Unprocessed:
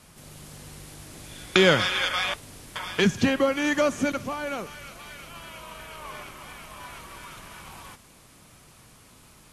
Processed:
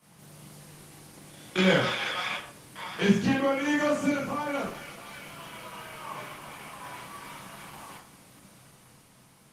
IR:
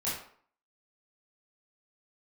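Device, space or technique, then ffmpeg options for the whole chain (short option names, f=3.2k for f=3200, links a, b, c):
far-field microphone of a smart speaker: -filter_complex "[1:a]atrim=start_sample=2205[a];[0:a][a]afir=irnorm=-1:irlink=0,highpass=f=110:w=0.5412,highpass=f=110:w=1.3066,dynaudnorm=f=100:g=17:m=3.5dB,volume=-7.5dB" -ar 48000 -c:a libopus -b:a 20k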